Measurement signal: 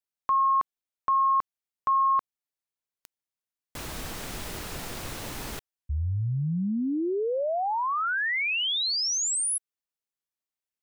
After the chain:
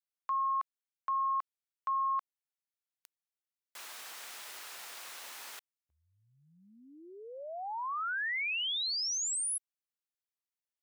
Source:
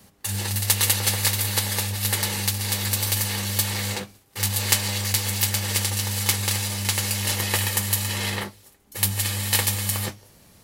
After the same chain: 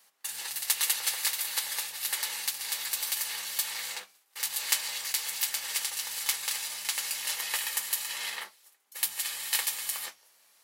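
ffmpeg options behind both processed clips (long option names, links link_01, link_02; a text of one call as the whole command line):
ffmpeg -i in.wav -af "highpass=970,volume=-6.5dB" out.wav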